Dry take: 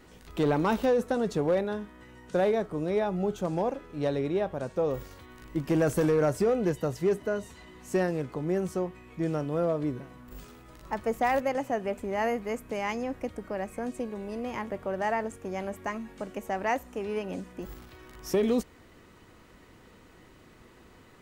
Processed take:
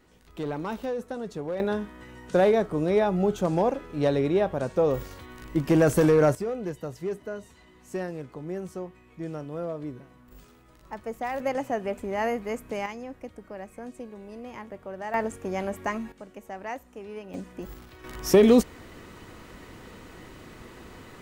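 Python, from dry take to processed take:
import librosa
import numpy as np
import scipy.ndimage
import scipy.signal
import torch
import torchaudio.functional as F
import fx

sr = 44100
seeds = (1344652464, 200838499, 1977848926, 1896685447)

y = fx.gain(x, sr, db=fx.steps((0.0, -6.5), (1.6, 5.0), (6.35, -5.5), (11.4, 1.0), (12.86, -6.0), (15.14, 4.0), (16.12, -7.0), (17.34, 1.0), (18.04, 9.0)))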